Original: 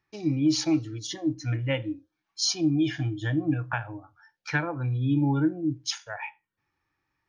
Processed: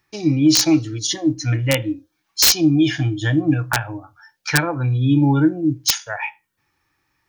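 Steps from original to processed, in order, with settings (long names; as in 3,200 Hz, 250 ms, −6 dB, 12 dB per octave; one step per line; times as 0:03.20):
high-shelf EQ 4,400 Hz +9 dB
wrap-around overflow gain 14 dB
level +8.5 dB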